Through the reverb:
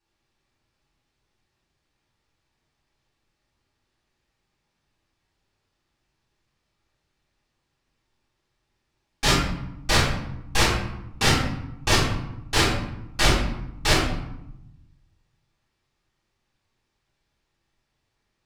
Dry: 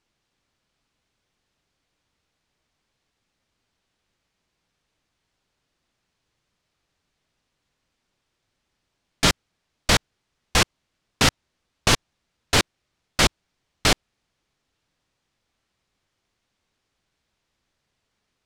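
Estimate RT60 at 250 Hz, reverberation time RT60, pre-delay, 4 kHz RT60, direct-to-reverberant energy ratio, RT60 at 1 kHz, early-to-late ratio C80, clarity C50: 1.3 s, 0.85 s, 3 ms, 0.55 s, -10.5 dB, 0.85 s, 5.5 dB, 2.0 dB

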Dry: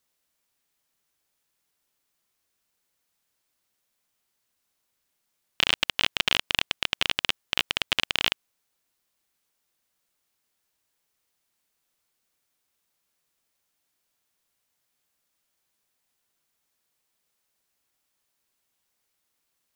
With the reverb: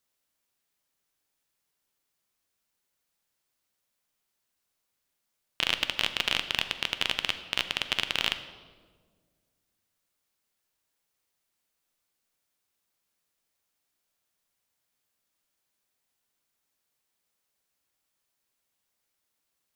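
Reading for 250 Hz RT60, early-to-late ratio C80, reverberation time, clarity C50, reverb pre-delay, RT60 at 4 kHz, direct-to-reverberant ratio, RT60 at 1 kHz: 2.2 s, 12.5 dB, 1.6 s, 11.0 dB, 10 ms, 1.1 s, 9.0 dB, 1.4 s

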